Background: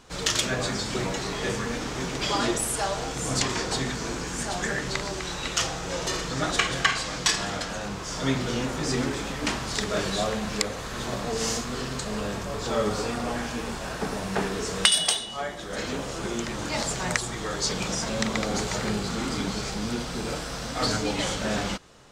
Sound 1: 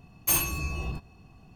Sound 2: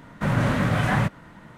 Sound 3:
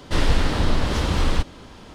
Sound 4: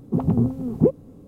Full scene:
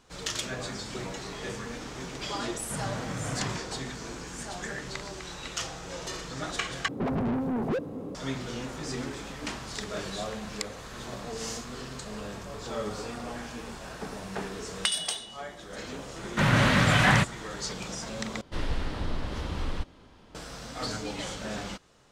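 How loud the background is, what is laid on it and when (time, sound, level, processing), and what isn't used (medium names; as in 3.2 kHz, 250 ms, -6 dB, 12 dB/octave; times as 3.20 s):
background -8 dB
2.49 s: add 2 -13.5 dB
6.88 s: replace with 4 -17.5 dB + overdrive pedal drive 42 dB, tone 1.3 kHz, clips at -3.5 dBFS
16.16 s: add 2 -1.5 dB + peaking EQ 4 kHz +11 dB 2.5 oct
18.41 s: replace with 3 -11.5 dB + treble shelf 4.9 kHz -5 dB
not used: 1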